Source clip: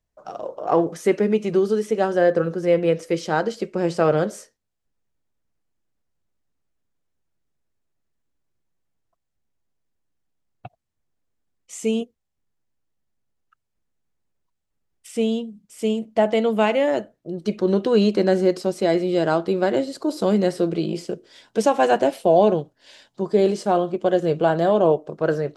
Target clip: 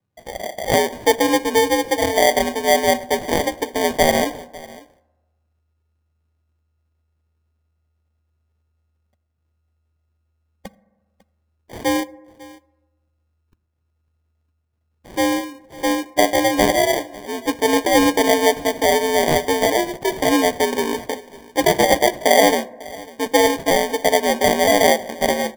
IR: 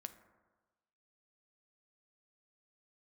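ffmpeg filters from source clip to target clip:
-filter_complex "[0:a]afreqshift=79,acrusher=samples=33:mix=1:aa=0.000001,aecho=1:1:549:0.0891,asplit=2[a][b];[1:a]atrim=start_sample=2205[c];[b][c]afir=irnorm=-1:irlink=0,volume=0dB[d];[a][d]amix=inputs=2:normalize=0,volume=-1.5dB"

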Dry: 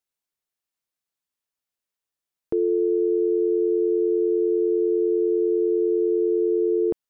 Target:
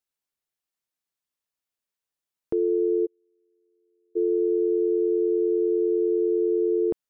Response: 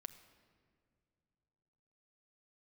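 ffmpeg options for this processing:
-filter_complex "[0:a]asplit=3[a][b][c];[a]afade=t=out:st=3.05:d=0.02[d];[b]agate=range=-46dB:threshold=-7dB:ratio=16:detection=peak,afade=t=in:st=3.05:d=0.02,afade=t=out:st=4.15:d=0.02[e];[c]afade=t=in:st=4.15:d=0.02[f];[d][e][f]amix=inputs=3:normalize=0,volume=-1.5dB"

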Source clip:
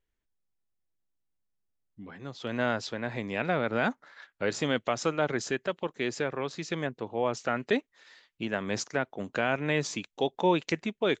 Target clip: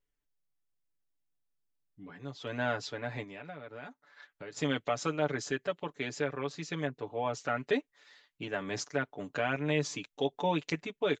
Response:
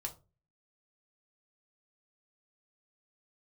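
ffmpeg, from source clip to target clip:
-filter_complex "[0:a]aecho=1:1:6.9:0.77,asplit=3[a][b][c];[a]afade=t=out:st=3.23:d=0.02[d];[b]acompressor=threshold=-41dB:ratio=3,afade=t=in:st=3.23:d=0.02,afade=t=out:st=4.56:d=0.02[e];[c]afade=t=in:st=4.56:d=0.02[f];[d][e][f]amix=inputs=3:normalize=0,volume=-5.5dB"

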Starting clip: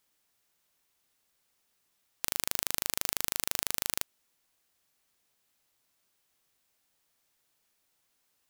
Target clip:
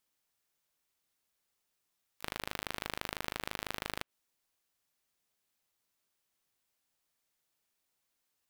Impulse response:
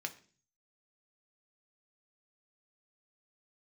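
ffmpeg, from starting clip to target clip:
-filter_complex "[0:a]asplit=4[a][b][c][d];[b]asetrate=52444,aresample=44100,atempo=0.840896,volume=-16dB[e];[c]asetrate=66075,aresample=44100,atempo=0.66742,volume=-10dB[f];[d]asetrate=88200,aresample=44100,atempo=0.5,volume=-9dB[g];[a][e][f][g]amix=inputs=4:normalize=0,acrossover=split=3200[h][i];[i]acompressor=threshold=-42dB:ratio=4:attack=1:release=60[j];[h][j]amix=inputs=2:normalize=0,aeval=exprs='0.15*(cos(1*acos(clip(val(0)/0.15,-1,1)))-cos(1*PI/2))+0.0237*(cos(4*acos(clip(val(0)/0.15,-1,1)))-cos(4*PI/2))+0.0168*(cos(7*acos(clip(val(0)/0.15,-1,1)))-cos(7*PI/2))':c=same,volume=6dB"

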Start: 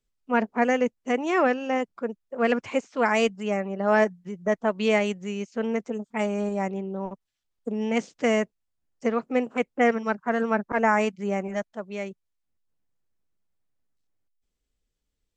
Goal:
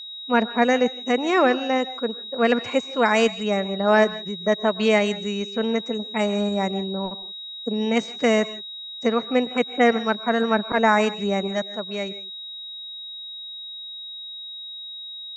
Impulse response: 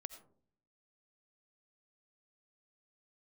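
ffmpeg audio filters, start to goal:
-filter_complex "[0:a]aeval=exprs='val(0)+0.0126*sin(2*PI*3800*n/s)':c=same,asplit=2[a][b];[1:a]atrim=start_sample=2205,afade=t=out:st=0.15:d=0.01,atrim=end_sample=7056,asetrate=25578,aresample=44100[c];[b][c]afir=irnorm=-1:irlink=0,volume=2dB[d];[a][d]amix=inputs=2:normalize=0,volume=-2.5dB"

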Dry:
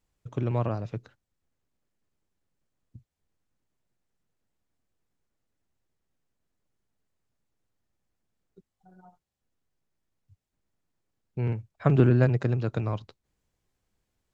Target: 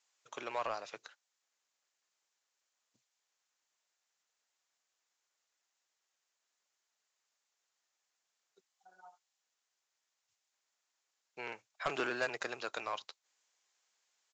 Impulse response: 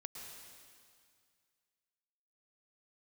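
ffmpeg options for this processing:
-af "highpass=830,aemphasis=mode=production:type=bsi,aresample=16000,asoftclip=type=tanh:threshold=-29dB,aresample=44100,volume=3dB"

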